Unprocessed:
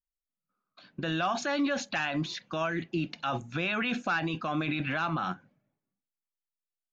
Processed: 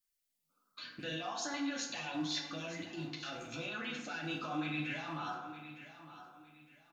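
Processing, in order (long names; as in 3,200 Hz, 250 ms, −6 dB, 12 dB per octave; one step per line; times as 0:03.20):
loose part that buzzes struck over −41 dBFS, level −43 dBFS
multi-voice chorus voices 2, 1 Hz, delay 11 ms, depth 3 ms
downward compressor, threshold −44 dBFS, peak gain reduction 16.5 dB
brickwall limiter −39.5 dBFS, peak gain reduction 8.5 dB
spectral tilt +2 dB per octave
auto-filter notch saw up 1.3 Hz 660–2,800 Hz
repeating echo 910 ms, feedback 30%, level −13 dB
feedback delay network reverb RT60 1.1 s, low-frequency decay 0.7×, high-frequency decay 0.5×, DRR −0.5 dB
level +6.5 dB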